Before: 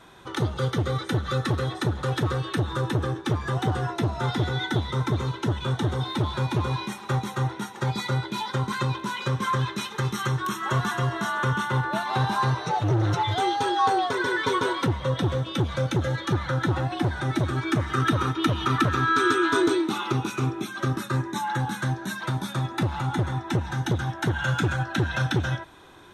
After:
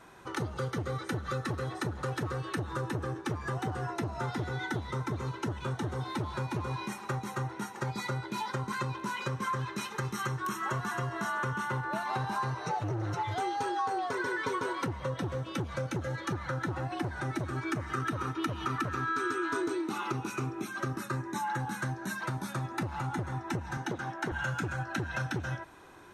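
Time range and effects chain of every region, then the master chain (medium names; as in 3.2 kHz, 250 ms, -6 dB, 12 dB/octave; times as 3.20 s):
23.77–24.32 s: high-pass 200 Hz + treble shelf 8.4 kHz -10.5 dB
whole clip: peaking EQ 3.5 kHz -11 dB 0.3 oct; compression 4:1, threshold -27 dBFS; bass shelf 210 Hz -3 dB; trim -2.5 dB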